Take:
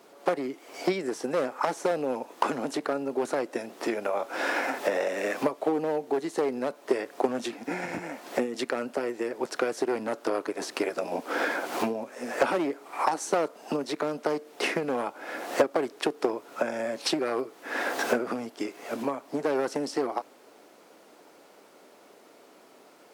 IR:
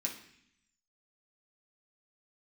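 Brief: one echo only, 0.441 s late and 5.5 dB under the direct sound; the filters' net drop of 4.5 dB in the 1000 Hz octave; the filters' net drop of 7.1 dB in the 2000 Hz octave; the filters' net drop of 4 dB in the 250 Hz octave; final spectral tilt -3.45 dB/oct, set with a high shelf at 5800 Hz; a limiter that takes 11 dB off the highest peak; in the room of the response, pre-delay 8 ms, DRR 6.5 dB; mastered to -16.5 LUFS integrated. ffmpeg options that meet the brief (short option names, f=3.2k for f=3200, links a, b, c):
-filter_complex "[0:a]equalizer=f=250:t=o:g=-5,equalizer=f=1k:t=o:g=-4,equalizer=f=2k:t=o:g=-8.5,highshelf=f=5.8k:g=5,alimiter=limit=-22dB:level=0:latency=1,aecho=1:1:441:0.531,asplit=2[a][b];[1:a]atrim=start_sample=2205,adelay=8[c];[b][c]afir=irnorm=-1:irlink=0,volume=-7.5dB[d];[a][d]amix=inputs=2:normalize=0,volume=16dB"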